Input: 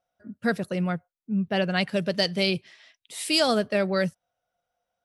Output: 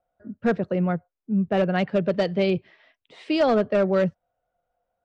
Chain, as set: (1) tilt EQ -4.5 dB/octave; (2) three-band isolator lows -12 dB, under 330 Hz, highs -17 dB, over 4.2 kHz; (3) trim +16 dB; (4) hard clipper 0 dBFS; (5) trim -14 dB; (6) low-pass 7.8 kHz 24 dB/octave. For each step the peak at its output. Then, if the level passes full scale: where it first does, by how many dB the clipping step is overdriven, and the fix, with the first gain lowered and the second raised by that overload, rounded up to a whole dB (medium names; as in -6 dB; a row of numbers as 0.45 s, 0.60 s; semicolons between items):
-8.5 dBFS, -10.0 dBFS, +6.0 dBFS, 0.0 dBFS, -14.0 dBFS, -13.5 dBFS; step 3, 6.0 dB; step 3 +10 dB, step 5 -8 dB